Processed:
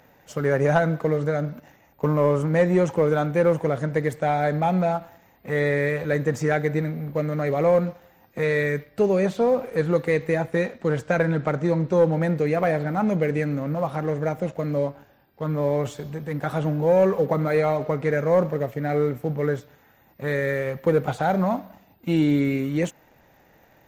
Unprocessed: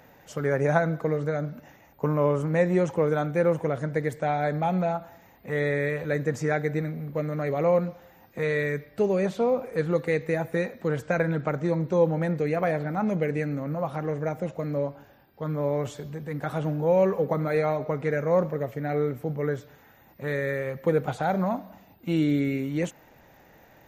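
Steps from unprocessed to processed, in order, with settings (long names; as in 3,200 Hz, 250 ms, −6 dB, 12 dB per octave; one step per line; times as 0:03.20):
0:10.34–0:12.14: low-pass filter 10,000 Hz 12 dB per octave
leveller curve on the samples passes 1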